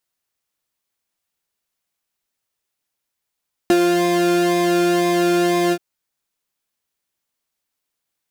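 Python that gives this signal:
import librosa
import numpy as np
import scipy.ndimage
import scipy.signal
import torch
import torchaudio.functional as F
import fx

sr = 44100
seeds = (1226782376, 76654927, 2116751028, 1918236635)

y = fx.sub_patch_pwm(sr, seeds[0], note=65, wave2='saw', interval_st=7, detune_cents=16, level2_db=-9.0, sub_db=-18.5, noise_db=-30.0, kind='highpass', cutoff_hz=170.0, q=3.3, env_oct=0.5, env_decay_s=0.27, env_sustain_pct=35, attack_ms=1.3, decay_s=0.06, sustain_db=-4, release_s=0.06, note_s=2.02, lfo_hz=2.0, width_pct=30, width_swing_pct=6)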